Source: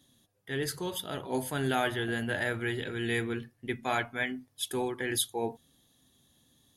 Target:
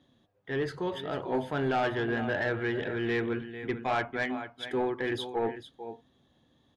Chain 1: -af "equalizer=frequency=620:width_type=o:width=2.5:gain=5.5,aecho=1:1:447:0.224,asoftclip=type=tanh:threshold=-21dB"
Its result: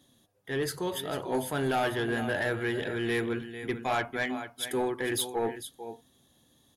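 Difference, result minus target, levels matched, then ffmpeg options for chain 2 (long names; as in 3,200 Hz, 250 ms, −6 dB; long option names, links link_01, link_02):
4,000 Hz band +3.5 dB
-af "lowpass=2900,equalizer=frequency=620:width_type=o:width=2.5:gain=5.5,aecho=1:1:447:0.224,asoftclip=type=tanh:threshold=-21dB"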